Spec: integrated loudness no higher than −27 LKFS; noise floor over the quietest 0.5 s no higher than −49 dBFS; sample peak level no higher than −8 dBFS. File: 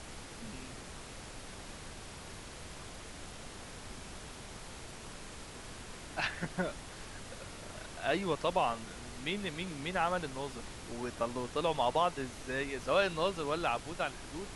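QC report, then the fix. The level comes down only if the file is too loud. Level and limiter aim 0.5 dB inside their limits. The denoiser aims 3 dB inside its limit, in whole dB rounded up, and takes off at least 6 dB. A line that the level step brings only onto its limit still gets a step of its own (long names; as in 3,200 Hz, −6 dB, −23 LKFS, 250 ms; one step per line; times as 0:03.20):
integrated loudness −37.5 LKFS: in spec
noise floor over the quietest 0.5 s −47 dBFS: out of spec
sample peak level −17.0 dBFS: in spec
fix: broadband denoise 6 dB, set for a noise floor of −47 dBFS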